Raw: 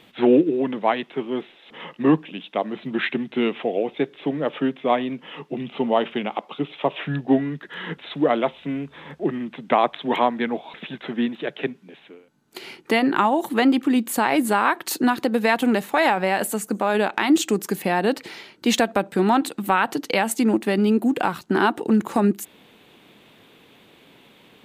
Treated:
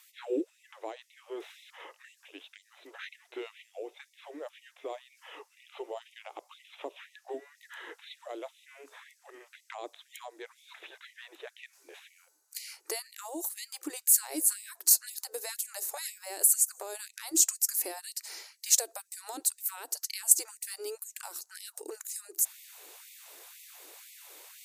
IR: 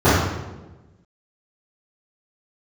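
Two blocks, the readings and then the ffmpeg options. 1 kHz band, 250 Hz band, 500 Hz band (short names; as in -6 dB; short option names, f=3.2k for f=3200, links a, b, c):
-24.5 dB, -25.5 dB, -19.5 dB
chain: -filter_complex "[0:a]aemphasis=mode=reproduction:type=cd,acrossover=split=440|3700[a][b][c];[b]acompressor=threshold=-33dB:ratio=20[d];[a][d][c]amix=inputs=3:normalize=0,asubboost=boost=5.5:cutoff=110,aexciter=amount=12.2:drive=6.6:freq=5k,areverse,acompressor=mode=upward:threshold=-31dB:ratio=2.5,areverse,afftfilt=real='re*gte(b*sr/1024,290*pow(1900/290,0.5+0.5*sin(2*PI*2*pts/sr)))':imag='im*gte(b*sr/1024,290*pow(1900/290,0.5+0.5*sin(2*PI*2*pts/sr)))':win_size=1024:overlap=0.75,volume=-9dB"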